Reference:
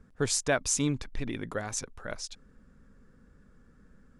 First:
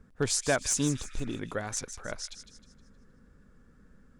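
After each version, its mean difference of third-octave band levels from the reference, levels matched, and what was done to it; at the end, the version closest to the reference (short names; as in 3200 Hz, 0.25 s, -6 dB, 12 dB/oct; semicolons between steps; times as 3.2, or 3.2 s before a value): 2.5 dB: one-sided fold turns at -18 dBFS; spectral repair 0.8–1.36, 1200–2500 Hz before; thin delay 0.156 s, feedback 41%, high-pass 2300 Hz, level -9.5 dB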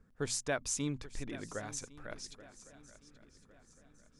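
6.0 dB: notches 60/120/180/240 Hz; swung echo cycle 1.107 s, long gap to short 3:1, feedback 38%, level -17 dB; gain -7.5 dB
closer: first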